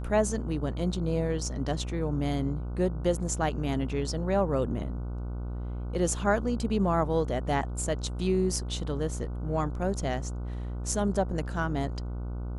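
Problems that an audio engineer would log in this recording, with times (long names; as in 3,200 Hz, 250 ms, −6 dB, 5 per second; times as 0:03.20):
mains buzz 60 Hz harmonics 25 −34 dBFS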